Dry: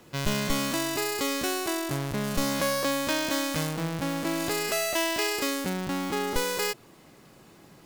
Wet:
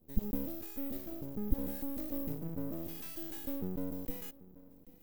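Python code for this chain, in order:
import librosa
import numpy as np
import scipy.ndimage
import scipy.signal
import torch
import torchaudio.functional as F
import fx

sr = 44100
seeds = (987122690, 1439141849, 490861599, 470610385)

p1 = fx.rattle_buzz(x, sr, strikes_db=-32.0, level_db=-21.0)
p2 = fx.tone_stack(p1, sr, knobs='6-0-2')
p3 = p2 + 0.85 * np.pad(p2, (int(3.7 * sr / 1000.0), 0))[:len(p2)]
p4 = fx.dynamic_eq(p3, sr, hz=120.0, q=0.83, threshold_db=-60.0, ratio=4.0, max_db=4)
p5 = fx.stretch_vocoder(p4, sr, factor=0.64)
p6 = scipy.signal.sosfilt(scipy.signal.cheby2(4, 40, [900.0, 10000.0], 'bandstop', fs=sr, output='sos'), p5)
p7 = p6 + fx.echo_single(p6, sr, ms=786, db=-19.5, dry=0)
p8 = np.maximum(p7, 0.0)
y = p8 * 10.0 ** (13.0 / 20.0)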